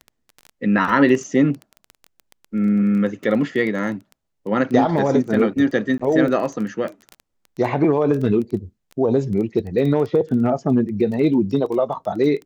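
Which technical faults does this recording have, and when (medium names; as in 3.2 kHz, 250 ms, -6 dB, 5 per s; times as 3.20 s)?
crackle 14 per s -26 dBFS
5.98–6.00 s: dropout 15 ms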